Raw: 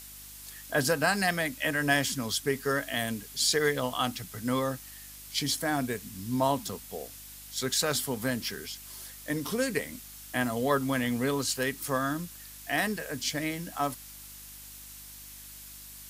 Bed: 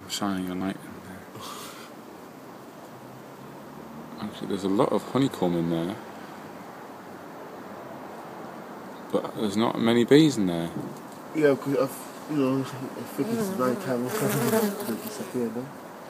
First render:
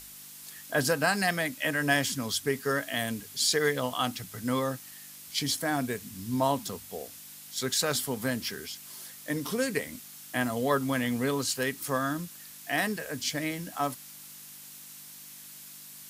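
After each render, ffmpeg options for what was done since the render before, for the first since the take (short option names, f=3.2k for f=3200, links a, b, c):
-af "bandreject=f=50:t=h:w=4,bandreject=f=100:t=h:w=4"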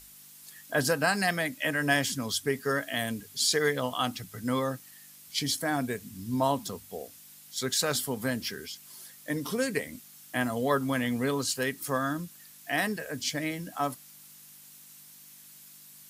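-af "afftdn=nr=6:nf=-47"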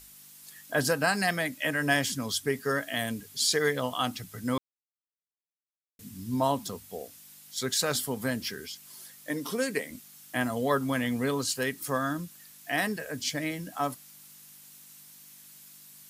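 -filter_complex "[0:a]asettb=1/sr,asplit=3[a][b][c];[a]atrim=end=9.284[d];[b]atrim=start=9.28:end=9.91,asetpts=PTS-STARTPTS,afade=t=in:d=0.004:c=qsin,afade=t=out:st=0.626:d=0.004:c=qsin,highpass=190[e];[c]atrim=start=9.906[f];[d][e]acrossfade=d=0.004:c1=hsin:c2=qsin[g];[g][f]acrossfade=d=0.004:c1=qsin:c2=hsin,asplit=3[h][i][j];[h]atrim=end=4.58,asetpts=PTS-STARTPTS,afade=t=out:st=4.576:d=0.004:c=hsin[k];[i]atrim=start=4.58:end=5.99,asetpts=PTS-STARTPTS,volume=0[l];[j]atrim=start=5.99,asetpts=PTS-STARTPTS,afade=t=in:d=0.004:c=hsin[m];[k][l][m]concat=n=3:v=0:a=1"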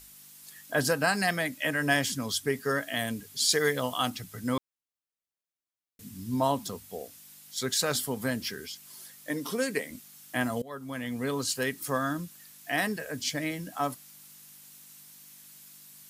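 -filter_complex "[0:a]asettb=1/sr,asplit=3[a][b][c];[a]atrim=end=3.494[d];[b]atrim=start=3.49:end=4.1,asetpts=PTS-STARTPTS,afade=t=in:d=0.004:c=qsin,afade=t=out:st=0.606:d=0.004:c=qsin,highshelf=f=5.4k:g=5[e];[c]atrim=start=4.096[f];[d][e]acrossfade=d=0.004:c1=hsin:c2=qsin[g];[g][f]acrossfade=d=0.004:c1=qsin:c2=hsin,asplit=2[h][i];[h]atrim=end=10.62,asetpts=PTS-STARTPTS,afade=t=out:st=10.616:d=0.004:c=hsin:silence=0.0707946[j];[i]atrim=start=10.62,asetpts=PTS-STARTPTS,afade=t=in:d=0.89:silence=0.0707946[k];[j][k]concat=n=2:v=0:a=1"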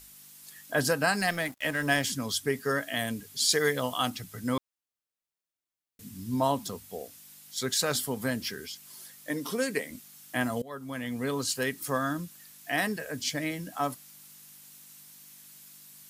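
-filter_complex "[0:a]asettb=1/sr,asplit=3[a][b][c];[a]atrim=end=1.204[d];[b]atrim=start=1.2:end=2.04,asetpts=PTS-STARTPTS,afade=t=in:d=0.004:c=qsin,afade=t=out:st=0.836:d=0.004:c=qsin,aeval=exprs='sgn(val(0))*max(abs(val(0))-0.00631,0)':c=same[e];[c]atrim=start=2.036[f];[d][e]acrossfade=d=0.004:c1=hsin:c2=qsin[g];[g][f]acrossfade=d=0.004:c1=qsin:c2=hsin"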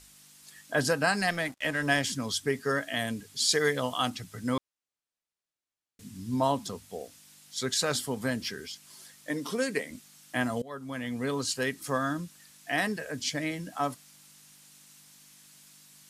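-af "lowpass=9.4k"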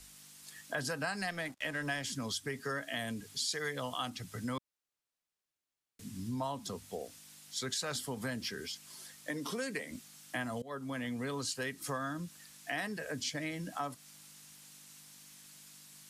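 -filter_complex "[0:a]acrossover=split=200|590|3800[a][b][c][d];[b]alimiter=level_in=8.5dB:limit=-24dB:level=0:latency=1,volume=-8.5dB[e];[a][e][c][d]amix=inputs=4:normalize=0,acompressor=threshold=-36dB:ratio=3"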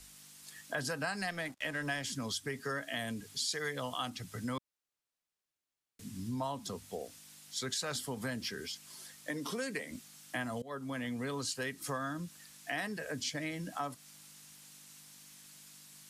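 -af anull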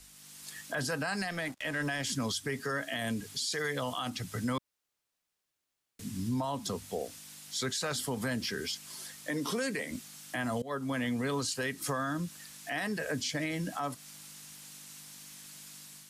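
-af "alimiter=level_in=6.5dB:limit=-24dB:level=0:latency=1:release=15,volume=-6.5dB,dynaudnorm=f=110:g=5:m=6dB"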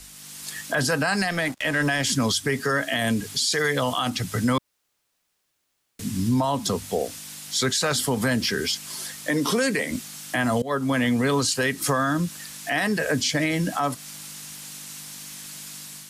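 -af "volume=10.5dB"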